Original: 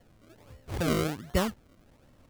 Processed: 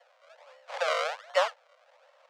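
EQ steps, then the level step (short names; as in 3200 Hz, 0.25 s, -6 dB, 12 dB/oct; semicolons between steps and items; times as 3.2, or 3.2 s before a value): steep high-pass 510 Hz 96 dB/oct; air absorption 130 m; +6.5 dB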